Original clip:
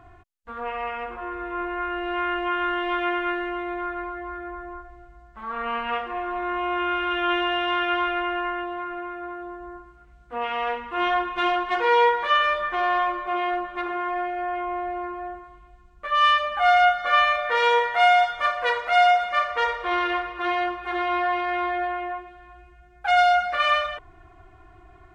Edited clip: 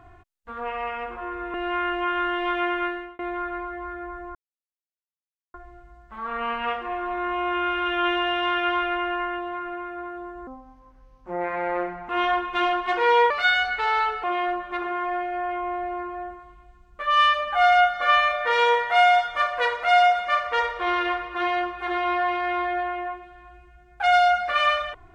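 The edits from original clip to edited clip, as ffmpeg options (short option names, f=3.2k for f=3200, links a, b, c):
-filter_complex "[0:a]asplit=8[a][b][c][d][e][f][g][h];[a]atrim=end=1.542[i];[b]atrim=start=1.978:end=3.63,asetpts=PTS-STARTPTS,afade=t=out:st=1.292:d=0.36[j];[c]atrim=start=3.63:end=4.79,asetpts=PTS-STARTPTS,afade=t=in:d=0.004:c=hsin,afade=t=out:st=1.156:d=0.004:c=hsin,apad=pad_dur=1.19[k];[d]atrim=start=4.79:end=9.724,asetpts=PTS-STARTPTS,afade=t=in:d=0.004:c=hsin[l];[e]atrim=start=9.72:end=10.92,asetpts=PTS-STARTPTS,asetrate=32634,aresample=44100[m];[f]atrim=start=10.916:end=12.134[n];[g]atrim=start=12.13:end=13.28,asetpts=PTS-STARTPTS,asetrate=54243,aresample=44100[o];[h]atrim=start=13.276[p];[j][k][l]concat=n=3:v=0:a=1[q];[i][q]acrossfade=d=0.004:c1=hsin:c2=hsin[r];[r][m]acrossfade=d=0.004:c1=hsin:c2=hsin[s];[s][n]acrossfade=d=0.004:c1=hsin:c2=hsin[t];[t][o]acrossfade=d=0.004:c1=hsin:c2=hsin[u];[u][p]acrossfade=d=0.004:c1=hsin:c2=hsin"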